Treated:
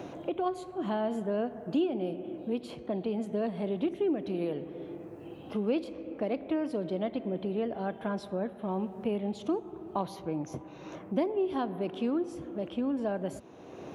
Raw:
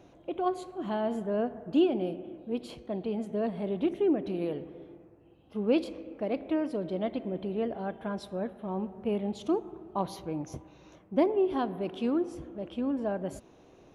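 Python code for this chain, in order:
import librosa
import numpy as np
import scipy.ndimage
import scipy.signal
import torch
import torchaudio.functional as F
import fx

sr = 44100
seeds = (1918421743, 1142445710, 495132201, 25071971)

y = scipy.signal.sosfilt(scipy.signal.butter(2, 77.0, 'highpass', fs=sr, output='sos'), x)
y = fx.band_squash(y, sr, depth_pct=70)
y = F.gain(torch.from_numpy(y), -1.0).numpy()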